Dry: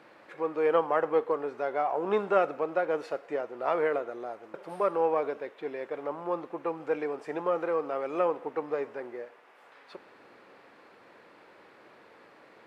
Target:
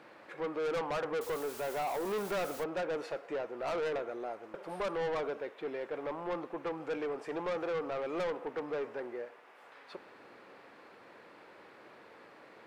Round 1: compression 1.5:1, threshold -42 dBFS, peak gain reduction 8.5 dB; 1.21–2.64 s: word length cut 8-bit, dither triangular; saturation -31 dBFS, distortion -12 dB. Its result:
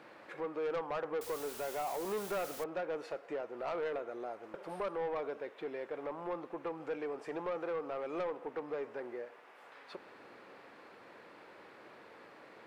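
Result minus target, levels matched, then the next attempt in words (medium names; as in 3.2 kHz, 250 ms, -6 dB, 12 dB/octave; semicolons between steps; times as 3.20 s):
compression: peak gain reduction +8.5 dB
1.21–2.64 s: word length cut 8-bit, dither triangular; saturation -31 dBFS, distortion -6 dB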